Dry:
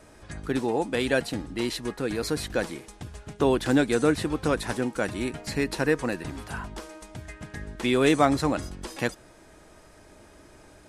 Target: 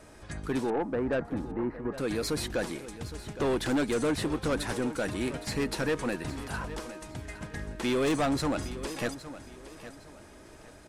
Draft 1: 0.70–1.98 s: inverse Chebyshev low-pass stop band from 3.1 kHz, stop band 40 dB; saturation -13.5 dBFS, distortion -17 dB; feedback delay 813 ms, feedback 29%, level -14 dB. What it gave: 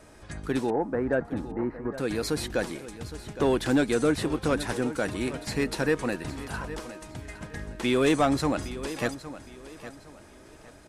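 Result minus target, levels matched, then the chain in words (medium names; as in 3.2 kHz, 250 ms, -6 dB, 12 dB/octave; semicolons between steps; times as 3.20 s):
saturation: distortion -9 dB
0.70–1.98 s: inverse Chebyshev low-pass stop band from 3.1 kHz, stop band 40 dB; saturation -23 dBFS, distortion -8 dB; feedback delay 813 ms, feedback 29%, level -14 dB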